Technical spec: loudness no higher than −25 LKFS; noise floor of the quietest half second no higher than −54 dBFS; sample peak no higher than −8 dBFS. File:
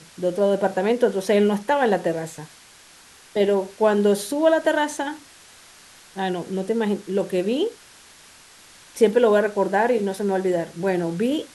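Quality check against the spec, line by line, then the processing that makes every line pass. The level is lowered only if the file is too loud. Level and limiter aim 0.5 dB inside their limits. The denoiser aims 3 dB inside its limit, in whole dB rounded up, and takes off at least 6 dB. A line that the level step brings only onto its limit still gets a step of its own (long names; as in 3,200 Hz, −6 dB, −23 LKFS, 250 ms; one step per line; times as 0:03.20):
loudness −22.0 LKFS: out of spec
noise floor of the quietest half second −49 dBFS: out of spec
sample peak −4.5 dBFS: out of spec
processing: broadband denoise 6 dB, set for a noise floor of −49 dBFS
level −3.5 dB
brickwall limiter −8.5 dBFS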